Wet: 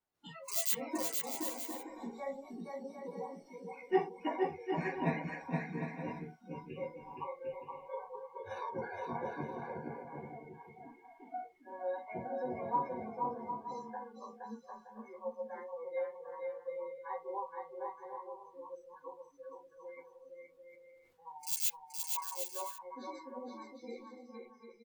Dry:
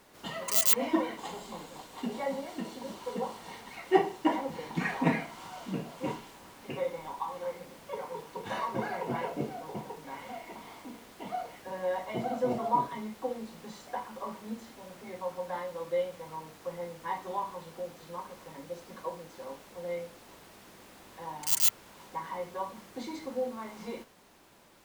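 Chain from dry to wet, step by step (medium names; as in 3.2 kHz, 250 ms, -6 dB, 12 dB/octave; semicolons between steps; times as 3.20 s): spectral noise reduction 25 dB; chorus voices 6, 0.24 Hz, delay 12 ms, depth 1.5 ms; bouncing-ball echo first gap 470 ms, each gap 0.6×, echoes 5; 20.65–21.32 s: decay stretcher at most 65 dB/s; trim -5 dB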